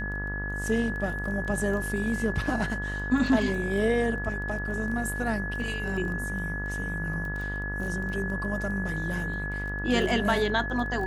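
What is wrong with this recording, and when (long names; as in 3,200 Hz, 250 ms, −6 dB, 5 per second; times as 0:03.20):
mains buzz 50 Hz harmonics 39 −34 dBFS
surface crackle 12 per second −34 dBFS
whistle 1,700 Hz −33 dBFS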